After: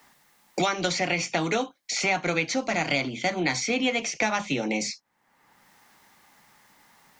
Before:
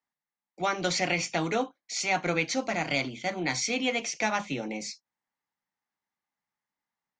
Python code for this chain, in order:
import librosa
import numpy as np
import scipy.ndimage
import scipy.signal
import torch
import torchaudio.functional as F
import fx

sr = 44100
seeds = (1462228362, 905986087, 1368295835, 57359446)

y = fx.band_squash(x, sr, depth_pct=100)
y = y * librosa.db_to_amplitude(2.0)